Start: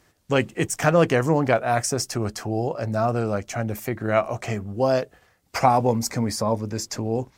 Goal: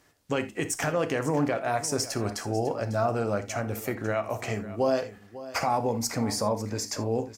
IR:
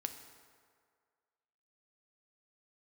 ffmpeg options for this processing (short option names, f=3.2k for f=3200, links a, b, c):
-filter_complex "[0:a]lowshelf=f=150:g=-6.5,alimiter=limit=-14dB:level=0:latency=1:release=138,aecho=1:1:548:0.168[a];[1:a]atrim=start_sample=2205,atrim=end_sample=3969[b];[a][b]afir=irnorm=-1:irlink=0"